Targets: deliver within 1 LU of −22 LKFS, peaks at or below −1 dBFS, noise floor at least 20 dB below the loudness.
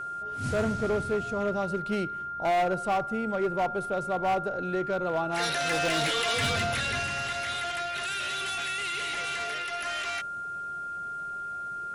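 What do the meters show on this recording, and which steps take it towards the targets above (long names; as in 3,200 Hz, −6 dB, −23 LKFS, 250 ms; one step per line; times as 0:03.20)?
share of clipped samples 2.0%; peaks flattened at −22.0 dBFS; interfering tone 1,400 Hz; level of the tone −33 dBFS; integrated loudness −29.0 LKFS; sample peak −22.0 dBFS; target loudness −22.0 LKFS
→ clipped peaks rebuilt −22 dBFS
notch filter 1,400 Hz, Q 30
level +7 dB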